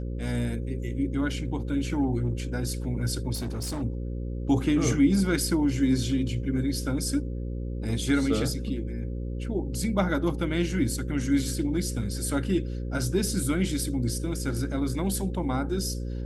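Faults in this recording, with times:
buzz 60 Hz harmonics 9 -32 dBFS
3.34–3.83 clipped -28 dBFS

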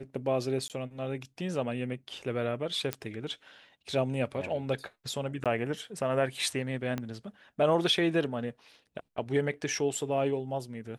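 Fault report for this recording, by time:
0.68–0.7 gap 18 ms
2.93 pop -14 dBFS
5.44–5.46 gap 17 ms
6.98 pop -19 dBFS

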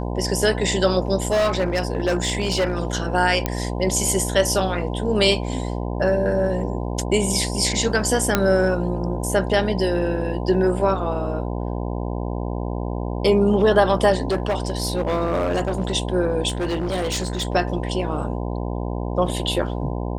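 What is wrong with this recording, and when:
buzz 60 Hz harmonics 17 -26 dBFS
1.28–2.85 clipped -15.5 dBFS
3.46 pop -6 dBFS
8.35 pop -2 dBFS
14.23–15.95 clipped -17 dBFS
16.48–17.47 clipped -20 dBFS

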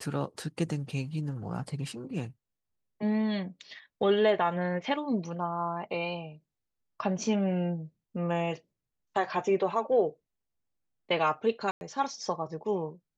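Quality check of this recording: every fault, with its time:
11.71–11.81 gap 0.101 s

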